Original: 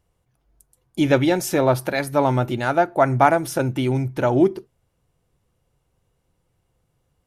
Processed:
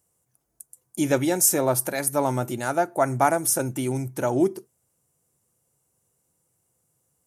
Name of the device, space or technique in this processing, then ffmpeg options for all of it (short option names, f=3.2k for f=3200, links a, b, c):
budget condenser microphone: -af "highpass=120,highshelf=f=5.4k:t=q:w=1.5:g=14,volume=-4.5dB"